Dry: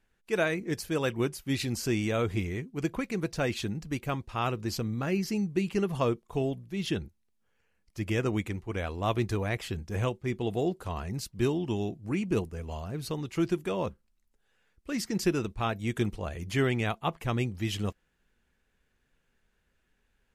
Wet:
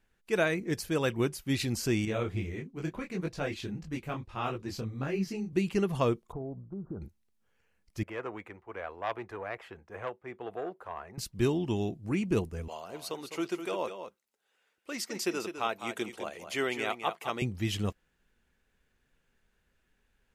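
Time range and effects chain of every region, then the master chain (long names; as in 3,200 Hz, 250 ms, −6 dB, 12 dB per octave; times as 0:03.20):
0:02.05–0:05.53: high-shelf EQ 6,300 Hz −7.5 dB + micro pitch shift up and down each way 56 cents
0:06.32–0:07.02: Butterworth low-pass 1,400 Hz 96 dB per octave + downward compressor 4 to 1, threshold −36 dBFS
0:08.03–0:11.18: high-pass filter 50 Hz + three-way crossover with the lows and the highs turned down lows −20 dB, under 460 Hz, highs −22 dB, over 2,000 Hz + saturating transformer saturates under 1,300 Hz
0:12.68–0:17.42: high-pass filter 420 Hz + notch filter 1,700 Hz, Q 14 + single-tap delay 206 ms −9 dB
whole clip: no processing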